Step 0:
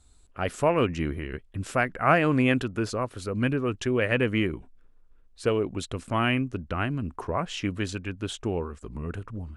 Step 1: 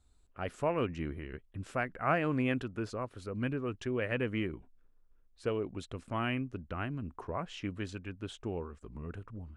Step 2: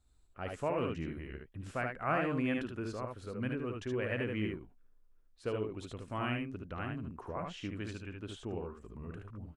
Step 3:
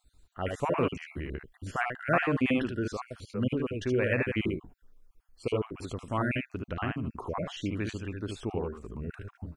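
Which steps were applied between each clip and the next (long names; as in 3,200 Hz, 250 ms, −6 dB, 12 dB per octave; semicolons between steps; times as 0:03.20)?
high-shelf EQ 4,700 Hz −8 dB; level −8.5 dB
ambience of single reflections 56 ms −11.5 dB, 74 ms −4 dB; level −3.5 dB
time-frequency cells dropped at random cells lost 34%; level +8 dB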